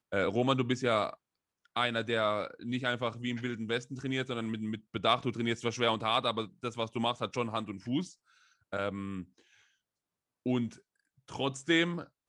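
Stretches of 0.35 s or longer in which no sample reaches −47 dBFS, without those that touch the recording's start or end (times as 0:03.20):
0:01.14–0:01.76
0:08.12–0:08.72
0:09.24–0:10.46
0:10.78–0:11.28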